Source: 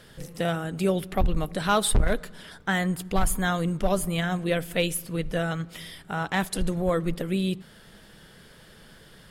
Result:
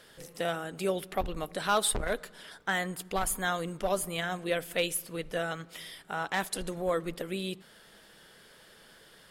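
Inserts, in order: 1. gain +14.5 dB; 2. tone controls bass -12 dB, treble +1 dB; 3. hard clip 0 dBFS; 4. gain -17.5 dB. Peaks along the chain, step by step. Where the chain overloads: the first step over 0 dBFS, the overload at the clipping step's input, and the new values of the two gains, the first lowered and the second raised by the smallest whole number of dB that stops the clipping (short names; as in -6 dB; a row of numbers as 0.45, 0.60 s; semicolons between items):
+1.5, +4.5, 0.0, -17.5 dBFS; step 1, 4.5 dB; step 1 +9.5 dB, step 4 -12.5 dB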